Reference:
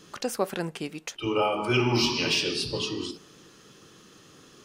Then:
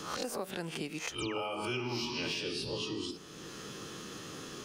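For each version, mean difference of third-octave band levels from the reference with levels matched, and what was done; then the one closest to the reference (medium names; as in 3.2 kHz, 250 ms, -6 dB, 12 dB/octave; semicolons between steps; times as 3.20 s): 9.0 dB: reverse spectral sustain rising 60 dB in 0.32 s; compression 2.5:1, threshold -31 dBFS, peak gain reduction 8.5 dB; painted sound fall, 1.18–1.41 s, 490–11000 Hz -42 dBFS; three bands compressed up and down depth 70%; trim -4.5 dB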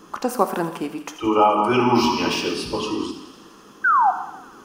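5.0 dB: graphic EQ 125/250/500/1000/2000/4000/8000 Hz -12/+5/-4/+9/-6/-9/-6 dB; painted sound fall, 3.84–4.11 s, 710–1600 Hz -23 dBFS; feedback echo behind a high-pass 84 ms, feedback 75%, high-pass 2 kHz, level -13 dB; gated-style reverb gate 340 ms falling, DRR 9 dB; trim +7 dB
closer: second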